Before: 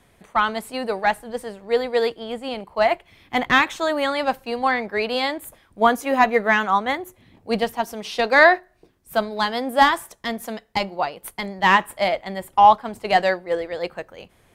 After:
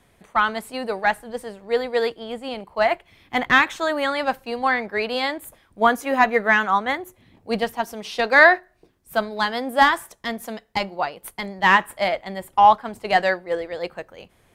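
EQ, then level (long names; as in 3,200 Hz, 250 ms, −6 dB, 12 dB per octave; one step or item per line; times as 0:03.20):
dynamic equaliser 1,600 Hz, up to +4 dB, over −32 dBFS, Q 1.9
−1.5 dB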